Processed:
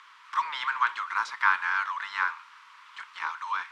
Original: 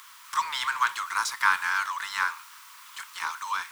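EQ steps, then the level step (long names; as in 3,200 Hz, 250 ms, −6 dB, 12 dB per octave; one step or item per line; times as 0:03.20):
band-pass filter 130–2,800 Hz
low-shelf EQ 220 Hz −8 dB
0.0 dB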